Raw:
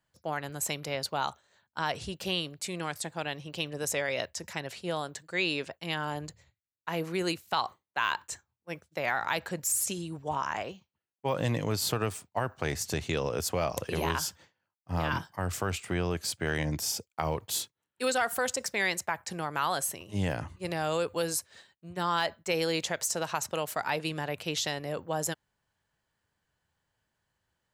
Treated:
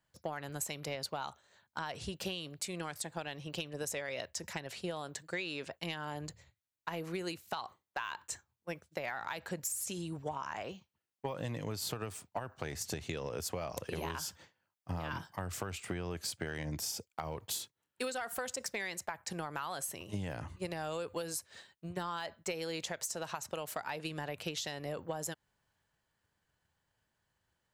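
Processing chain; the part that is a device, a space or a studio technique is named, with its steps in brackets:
drum-bus smash (transient designer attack +6 dB, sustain +2 dB; downward compressor, threshold −33 dBFS, peak gain reduction 13 dB; soft clipping −22 dBFS, distortion −22 dB)
level −1.5 dB

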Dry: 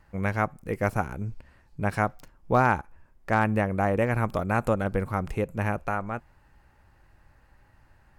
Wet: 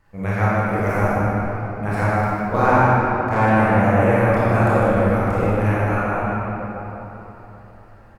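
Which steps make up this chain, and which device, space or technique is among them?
cave (single-tap delay 152 ms −8.5 dB; convolution reverb RT60 3.8 s, pre-delay 23 ms, DRR −10.5 dB)
level −3 dB

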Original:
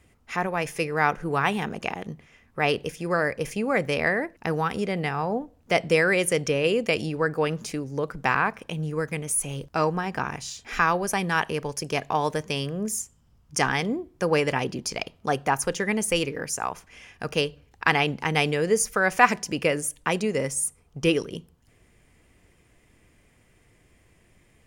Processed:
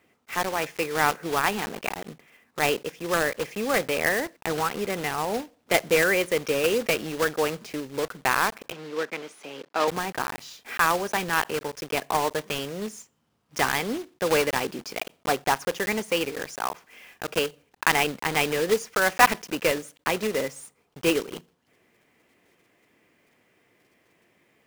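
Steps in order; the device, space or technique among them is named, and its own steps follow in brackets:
early digital voice recorder (band-pass filter 250–3,700 Hz; one scale factor per block 3 bits)
0:08.72–0:09.88: three-way crossover with the lows and the highs turned down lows −24 dB, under 210 Hz, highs −13 dB, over 5,800 Hz

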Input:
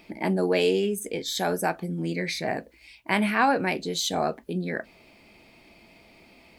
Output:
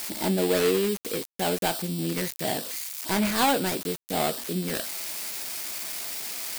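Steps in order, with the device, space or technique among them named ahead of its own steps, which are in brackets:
budget class-D amplifier (gap after every zero crossing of 0.22 ms; spike at every zero crossing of −16 dBFS)

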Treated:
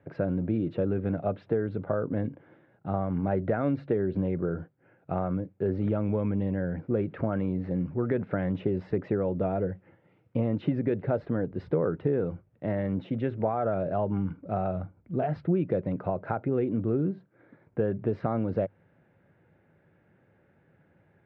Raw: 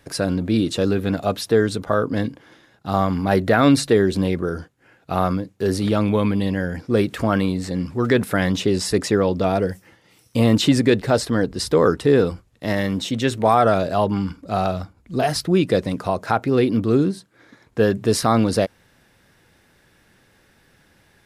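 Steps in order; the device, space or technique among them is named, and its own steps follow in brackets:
bass amplifier (downward compressor 4 to 1, threshold −19 dBFS, peak gain reduction 8 dB; loudspeaker in its box 80–2,000 Hz, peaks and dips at 100 Hz +6 dB, 160 Hz +8 dB, 360 Hz +3 dB, 570 Hz +5 dB, 1,100 Hz −6 dB, 1,800 Hz −5 dB)
level −7 dB

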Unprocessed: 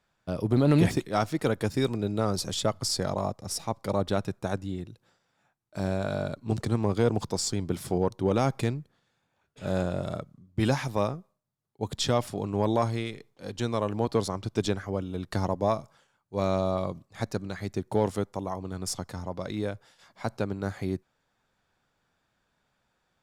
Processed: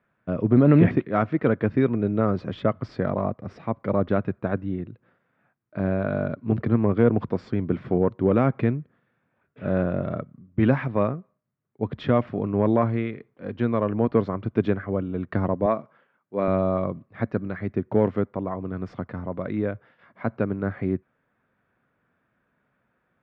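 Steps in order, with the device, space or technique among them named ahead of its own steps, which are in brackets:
bass cabinet (loudspeaker in its box 62–2,200 Hz, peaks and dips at 73 Hz −8 dB, 240 Hz +4 dB, 840 Hz −8 dB)
0:15.66–0:16.48: high-pass filter 210 Hz 12 dB per octave
level +5 dB

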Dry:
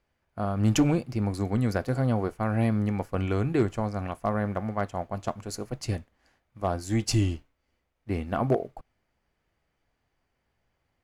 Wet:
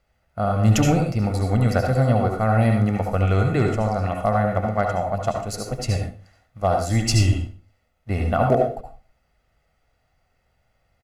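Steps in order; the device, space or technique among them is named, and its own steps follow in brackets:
microphone above a desk (comb filter 1.5 ms, depth 55%; convolution reverb RT60 0.35 s, pre-delay 66 ms, DRR 2 dB)
level +4.5 dB

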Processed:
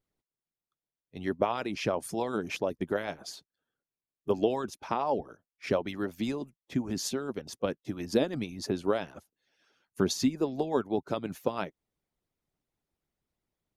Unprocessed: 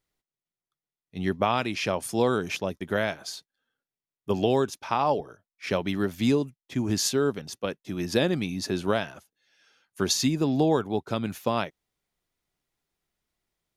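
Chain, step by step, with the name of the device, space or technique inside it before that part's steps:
tilt shelving filter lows +7 dB, about 790 Hz
parallel compression (in parallel at −3 dB: downward compressor, threshold −28 dBFS, peak gain reduction 14 dB)
on the sum: harmonic and percussive parts rebalanced harmonic −16 dB
low-shelf EQ 390 Hz −5 dB
level −2 dB

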